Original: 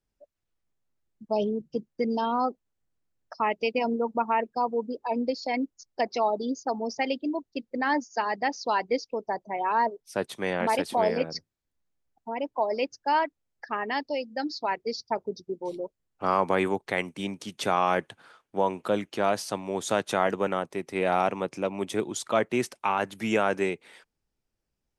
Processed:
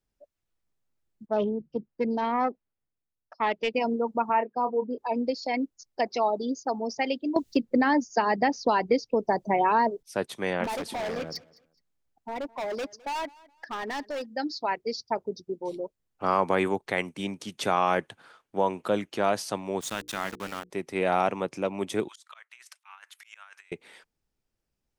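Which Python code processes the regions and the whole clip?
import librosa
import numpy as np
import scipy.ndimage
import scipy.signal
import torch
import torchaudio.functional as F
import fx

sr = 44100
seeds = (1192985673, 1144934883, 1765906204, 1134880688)

y = fx.chain(x, sr, fx.self_delay(depth_ms=0.1),
    fx.lowpass(hz=3200.0, slope=12),
    fx.band_widen(depth_pct=40), at=(1.26, 3.74))
y = fx.chain(y, sr, fx.bandpass_edges(low_hz=150.0, high_hz=2300.0),
    fx.doubler(ms=28.0, db=-9), at=(4.29, 4.98))
y = fx.chain(y, sr, fx.low_shelf(hz=360.0, db=11.0),
    fx.band_squash(depth_pct=100), at=(7.36, 10.03))
y = fx.chain(y, sr, fx.overload_stage(gain_db=29.5),
    fx.echo_feedback(ms=210, feedback_pct=27, wet_db=-23.0), at=(10.64, 14.26))
y = fx.chain(y, sr, fx.peak_eq(hz=530.0, db=-13.5, octaves=1.9),
    fx.sample_gate(floor_db=-36.0),
    fx.hum_notches(base_hz=60, count=8), at=(19.81, 20.7))
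y = fx.chain(y, sr, fx.highpass(hz=1200.0, slope=24),
    fx.auto_swell(attack_ms=695.0),
    fx.over_compress(threshold_db=-49.0, ratio=-0.5), at=(22.08, 23.72))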